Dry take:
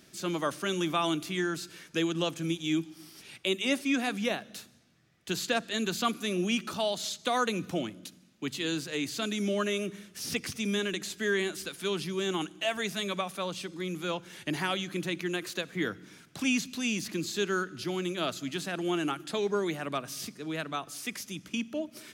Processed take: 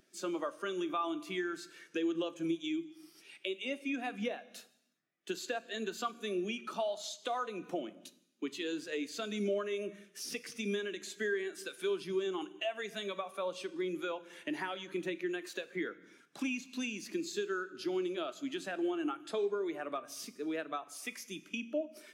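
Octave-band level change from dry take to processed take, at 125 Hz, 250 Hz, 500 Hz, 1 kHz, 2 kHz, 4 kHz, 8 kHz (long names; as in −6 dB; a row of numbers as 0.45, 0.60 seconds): −14.0, −6.0, −3.5, −6.0, −7.0, −9.5, −9.0 decibels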